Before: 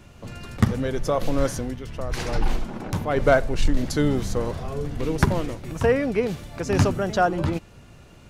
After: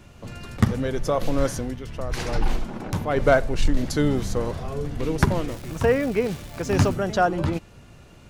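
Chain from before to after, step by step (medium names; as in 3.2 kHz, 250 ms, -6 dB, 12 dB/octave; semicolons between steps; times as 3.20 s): 5.47–6.94 s: crackle 470 per s -32 dBFS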